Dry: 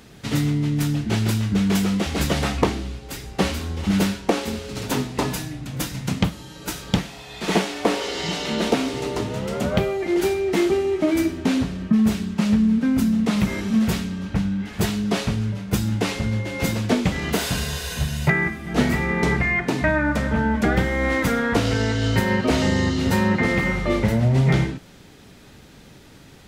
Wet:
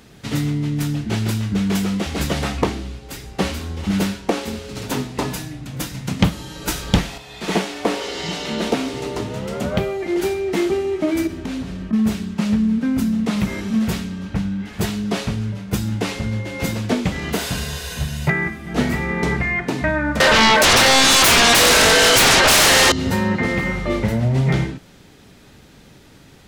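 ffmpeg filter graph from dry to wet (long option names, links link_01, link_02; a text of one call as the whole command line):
ffmpeg -i in.wav -filter_complex "[0:a]asettb=1/sr,asplit=3[link_01][link_02][link_03];[link_01]atrim=end=6.194[link_04];[link_02]atrim=start=6.19:end=7.18,asetpts=PTS-STARTPTS,afade=type=in:duration=0.004:curve=qsin,afade=type=out:start_time=0.986:duration=0.004:curve=qsin,asubboost=boost=8.5:cutoff=79,acontrast=53[link_05];[link_03]atrim=start=7.176[link_06];[link_04][link_05]acrossfade=duration=0.004:curve1=hsin:curve2=qsin[link_07];[link_07][link_06]acrossfade=duration=0.004:curve1=qsin:curve2=hsin,asettb=1/sr,asplit=3[link_08][link_09][link_10];[link_08]atrim=end=11.274[link_11];[link_09]atrim=start=11.27:end=11.93,asetpts=PTS-STARTPTS,afade=type=in:duration=0.004:curve=qsin,afade=type=out:start_time=0.656:duration=0.004:curve=qsin,acompressor=threshold=-23dB:ratio=6:attack=3.2:release=140:knee=1:detection=peak,aeval=exprs='val(0)+0.0126*(sin(2*PI*50*n/s)+sin(2*PI*2*50*n/s)/2+sin(2*PI*3*50*n/s)/3+sin(2*PI*4*50*n/s)/4+sin(2*PI*5*50*n/s)/5)':channel_layout=same[link_12];[link_10]atrim=start=11.926[link_13];[link_11][link_12]acrossfade=duration=0.004:curve1=hsin:curve2=qsin[link_14];[link_14][link_13]acrossfade=duration=0.004:curve1=qsin:curve2=hsin,asettb=1/sr,asplit=3[link_15][link_16][link_17];[link_15]atrim=end=20.204[link_18];[link_16]atrim=start=20.2:end=22.92,asetpts=PTS-STARTPTS,afade=type=in:duration=0.004:curve=qsin,afade=type=out:start_time=2.716:duration=0.004:curve=qsin,highpass=frequency=440:width=0.5412,highpass=frequency=440:width=1.3066,aeval=exprs='0.335*sin(PI/2*8.91*val(0)/0.335)':channel_layout=same[link_19];[link_17]atrim=start=22.916[link_20];[link_18][link_19]acrossfade=duration=0.004:curve1=hsin:curve2=qsin[link_21];[link_21][link_20]acrossfade=duration=0.004:curve1=qsin:curve2=hsin" out.wav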